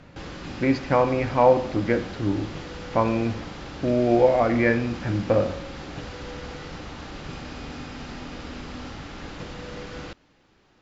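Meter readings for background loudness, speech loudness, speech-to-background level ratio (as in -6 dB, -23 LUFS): -37.5 LUFS, -23.0 LUFS, 14.5 dB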